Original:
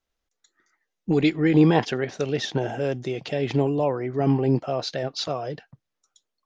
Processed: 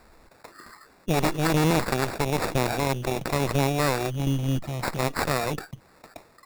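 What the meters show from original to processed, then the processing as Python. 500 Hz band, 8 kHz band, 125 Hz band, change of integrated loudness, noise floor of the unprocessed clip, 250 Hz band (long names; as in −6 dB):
−3.0 dB, can't be measured, 0.0 dB, −2.0 dB, −82 dBFS, −5.0 dB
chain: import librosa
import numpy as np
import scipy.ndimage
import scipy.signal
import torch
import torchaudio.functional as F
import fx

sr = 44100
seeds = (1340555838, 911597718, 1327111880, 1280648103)

y = fx.spec_box(x, sr, start_s=4.1, length_s=0.89, low_hz=230.0, high_hz=2700.0, gain_db=-18)
y = fx.quant_float(y, sr, bits=4)
y = fx.dynamic_eq(y, sr, hz=300.0, q=1.3, threshold_db=-30.0, ratio=4.0, max_db=-5)
y = fx.cheby_harmonics(y, sr, harmonics=(8,), levels_db=(-10,), full_scale_db=-6.0)
y = fx.sample_hold(y, sr, seeds[0], rate_hz=3100.0, jitter_pct=0)
y = fx.env_flatten(y, sr, amount_pct=50)
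y = y * 10.0 ** (-5.5 / 20.0)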